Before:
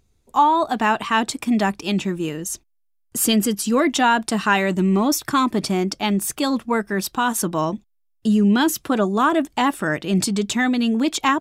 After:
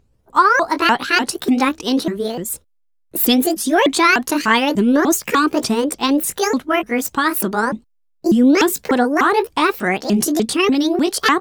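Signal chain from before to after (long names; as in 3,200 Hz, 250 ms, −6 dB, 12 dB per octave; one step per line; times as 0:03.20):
pitch shifter swept by a sawtooth +9 semitones, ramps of 297 ms
one half of a high-frequency compander decoder only
level +4.5 dB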